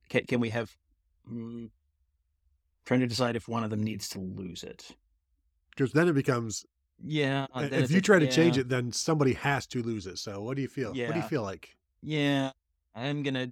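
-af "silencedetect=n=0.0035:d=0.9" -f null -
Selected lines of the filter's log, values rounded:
silence_start: 1.69
silence_end: 2.86 | silence_duration: 1.18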